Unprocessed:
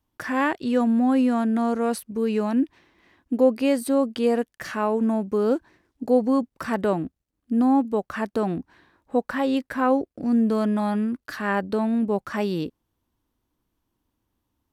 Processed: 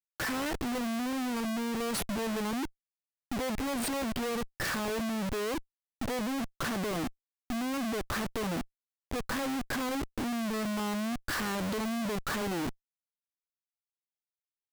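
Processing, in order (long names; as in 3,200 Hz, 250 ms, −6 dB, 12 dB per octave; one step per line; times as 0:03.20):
downward compressor 2.5 to 1, threshold −31 dBFS, peak gain reduction 12.5 dB
comparator with hysteresis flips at −44 dBFS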